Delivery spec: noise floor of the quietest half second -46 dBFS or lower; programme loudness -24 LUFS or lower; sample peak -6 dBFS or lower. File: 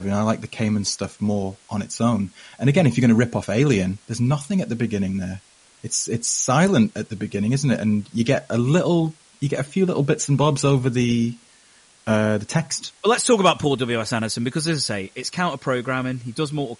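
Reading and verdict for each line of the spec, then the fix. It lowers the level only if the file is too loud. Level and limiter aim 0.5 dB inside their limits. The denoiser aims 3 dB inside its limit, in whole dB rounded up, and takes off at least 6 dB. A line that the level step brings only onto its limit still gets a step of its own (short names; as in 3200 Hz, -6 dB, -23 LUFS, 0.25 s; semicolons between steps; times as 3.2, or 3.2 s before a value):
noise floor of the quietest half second -53 dBFS: OK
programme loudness -21.5 LUFS: fail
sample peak -4.0 dBFS: fail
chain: gain -3 dB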